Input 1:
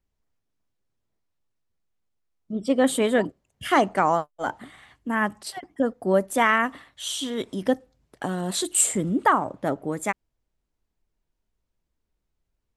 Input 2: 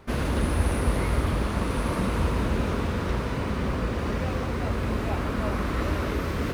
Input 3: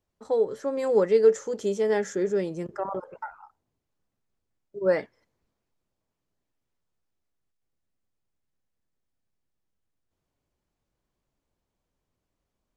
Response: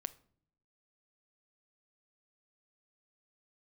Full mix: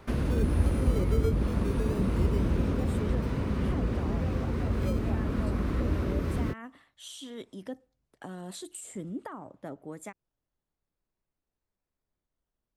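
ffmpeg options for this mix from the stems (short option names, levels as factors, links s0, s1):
-filter_complex "[0:a]alimiter=limit=0.211:level=0:latency=1,volume=0.237[s0];[1:a]volume=0.944[s1];[2:a]acrusher=samples=19:mix=1:aa=0.000001:lfo=1:lforange=11.4:lforate=0.24,volume=0.355[s2];[s0][s1][s2]amix=inputs=3:normalize=0,acrossover=split=420[s3][s4];[s4]acompressor=threshold=0.01:ratio=10[s5];[s3][s5]amix=inputs=2:normalize=0"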